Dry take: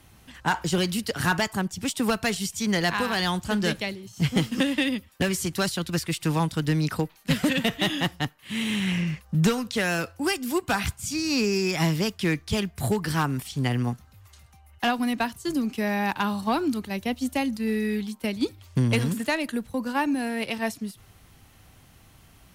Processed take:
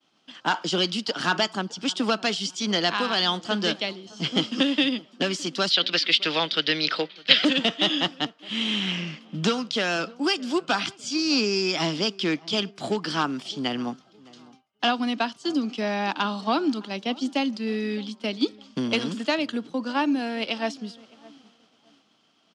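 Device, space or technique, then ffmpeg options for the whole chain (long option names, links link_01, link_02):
television speaker: -filter_complex "[0:a]asettb=1/sr,asplit=3[link_01][link_02][link_03];[link_01]atrim=end=5.704[link_04];[link_02]atrim=start=5.7:end=7.45,asetpts=PTS-STARTPTS,afade=type=in:duration=0.004:curve=qsin,afade=type=out:start_time=1.746:duration=0.004:curve=qsin,equalizer=frequency=125:width_type=o:width=1:gain=-5,equalizer=frequency=250:width_type=o:width=1:gain=-10,equalizer=frequency=500:width_type=o:width=1:gain=6,equalizer=frequency=1000:width_type=o:width=1:gain=-5,equalizer=frequency=2000:width_type=o:width=1:gain=11,equalizer=frequency=4000:width_type=o:width=1:gain=12,equalizer=frequency=8000:width_type=o:width=1:gain=-11[link_05];[link_03]atrim=start=7.446[link_06];[link_04][link_05]acrossfade=duration=0.004:curve1=hsin:curve2=qsin[link_07];[link_07][link_06]acrossfade=duration=0.004:curve1=qsin:curve2=hsin,highpass=frequency=200:width=0.5412,highpass=frequency=200:width=1.3066,equalizer=frequency=300:width_type=q:width=4:gain=4,equalizer=frequency=640:width_type=q:width=4:gain=4,equalizer=frequency=1300:width_type=q:width=4:gain=5,equalizer=frequency=1900:width_type=q:width=4:gain=-4,equalizer=frequency=3200:width_type=q:width=4:gain=10,equalizer=frequency=4900:width_type=q:width=4:gain=7,lowpass=frequency=6700:width=0.5412,lowpass=frequency=6700:width=1.3066,asplit=2[link_08][link_09];[link_09]adelay=612,lowpass=frequency=1100:poles=1,volume=-21dB,asplit=2[link_10][link_11];[link_11]adelay=612,lowpass=frequency=1100:poles=1,volume=0.43,asplit=2[link_12][link_13];[link_13]adelay=612,lowpass=frequency=1100:poles=1,volume=0.43[link_14];[link_08][link_10][link_12][link_14]amix=inputs=4:normalize=0,agate=range=-33dB:threshold=-47dB:ratio=3:detection=peak,volume=-1dB"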